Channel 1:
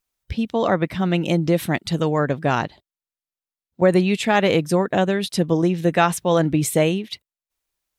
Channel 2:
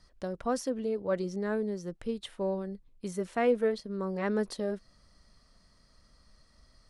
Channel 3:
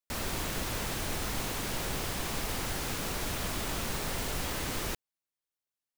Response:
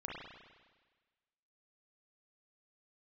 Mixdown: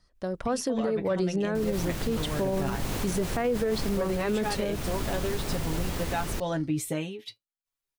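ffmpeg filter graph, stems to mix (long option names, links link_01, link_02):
-filter_complex "[0:a]aecho=1:1:7.2:0.68,flanger=delay=7.2:depth=2.5:regen=60:speed=0.37:shape=sinusoidal,adelay=150,volume=-7dB[link_01];[1:a]dynaudnorm=framelen=120:gausssize=9:maxgain=10.5dB,volume=2.5dB[link_02];[2:a]lowshelf=frequency=490:gain=8.5,adelay=1450,volume=0dB[link_03];[link_02][link_03]amix=inputs=2:normalize=0,agate=range=-7dB:threshold=-49dB:ratio=16:detection=peak,alimiter=limit=-14.5dB:level=0:latency=1:release=25,volume=0dB[link_04];[link_01][link_04]amix=inputs=2:normalize=0,alimiter=limit=-19dB:level=0:latency=1:release=250"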